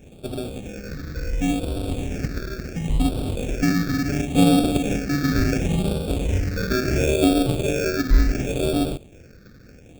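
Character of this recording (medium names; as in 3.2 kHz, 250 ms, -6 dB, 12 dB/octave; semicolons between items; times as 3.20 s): aliases and images of a low sample rate 1 kHz, jitter 0%; phasing stages 6, 0.71 Hz, lowest notch 790–1800 Hz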